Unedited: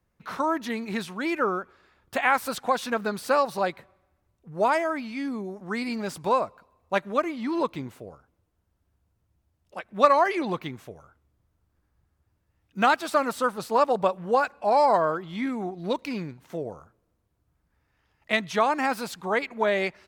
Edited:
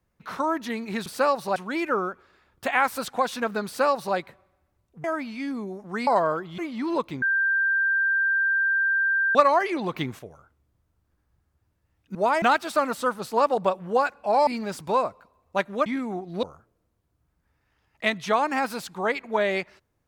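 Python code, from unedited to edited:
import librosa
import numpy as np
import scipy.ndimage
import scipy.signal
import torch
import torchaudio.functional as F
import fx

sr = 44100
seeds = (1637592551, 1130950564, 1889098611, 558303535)

y = fx.edit(x, sr, fx.duplicate(start_s=3.16, length_s=0.5, to_s=1.06),
    fx.move(start_s=4.54, length_s=0.27, to_s=12.8),
    fx.swap(start_s=5.84, length_s=1.39, other_s=14.85, other_length_s=0.51),
    fx.bleep(start_s=7.87, length_s=2.13, hz=1580.0, db=-19.5),
    fx.clip_gain(start_s=10.59, length_s=0.25, db=6.0),
    fx.cut(start_s=15.93, length_s=0.77), tone=tone)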